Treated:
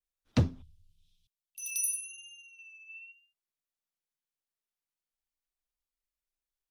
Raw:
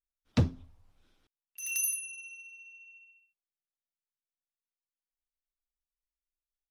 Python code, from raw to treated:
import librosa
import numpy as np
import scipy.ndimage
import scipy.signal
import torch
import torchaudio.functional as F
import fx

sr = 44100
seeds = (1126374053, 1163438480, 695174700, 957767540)

y = fx.vibrato(x, sr, rate_hz=0.98, depth_cents=53.0)
y = fx.ellip_bandstop(y, sr, low_hz=160.0, high_hz=3100.0, order=3, stop_db=40, at=(0.62, 2.59))
y = fx.spec_box(y, sr, start_s=2.9, length_s=0.22, low_hz=580.0, high_hz=5000.0, gain_db=8)